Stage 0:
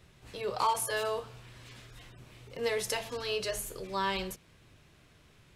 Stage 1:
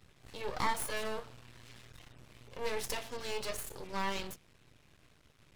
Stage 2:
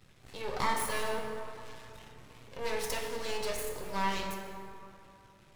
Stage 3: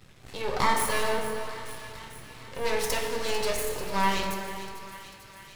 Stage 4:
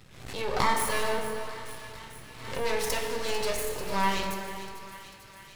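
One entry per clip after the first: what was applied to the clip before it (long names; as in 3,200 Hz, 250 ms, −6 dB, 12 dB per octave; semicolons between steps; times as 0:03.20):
half-wave rectification
dense smooth reverb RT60 2.8 s, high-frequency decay 0.45×, DRR 2 dB; level +1 dB
delay with a high-pass on its return 445 ms, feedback 68%, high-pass 1,400 Hz, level −13 dB; level +6.5 dB
background raised ahead of every attack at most 68 dB per second; level −1.5 dB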